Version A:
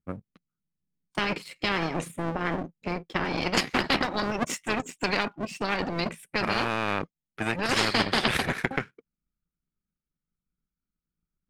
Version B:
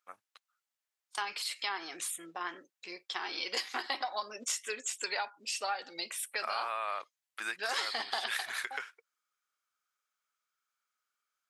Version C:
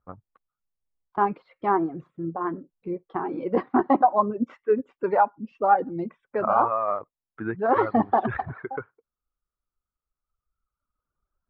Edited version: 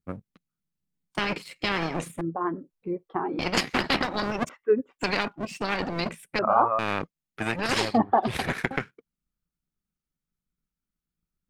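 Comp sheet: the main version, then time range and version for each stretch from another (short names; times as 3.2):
A
2.21–3.39 from C
4.49–4.99 from C
6.39–6.79 from C
7.87–8.34 from C, crossfade 0.24 s
not used: B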